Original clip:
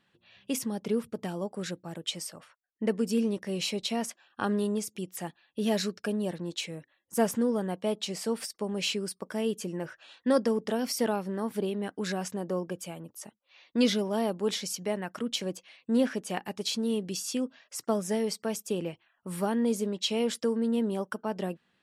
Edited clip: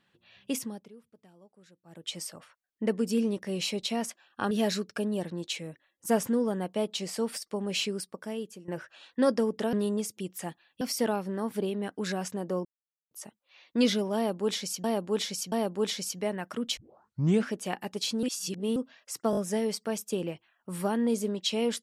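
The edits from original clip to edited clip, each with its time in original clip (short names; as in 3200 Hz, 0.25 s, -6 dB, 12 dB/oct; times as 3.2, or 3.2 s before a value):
0.51–2.22 dip -23 dB, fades 0.39 s
4.51–5.59 move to 10.81
9.01–9.76 fade out, to -16 dB
12.65–13.11 mute
14.16–14.84 loop, 3 plays
15.41 tape start 0.72 s
16.87–17.4 reverse
17.95 stutter 0.02 s, 4 plays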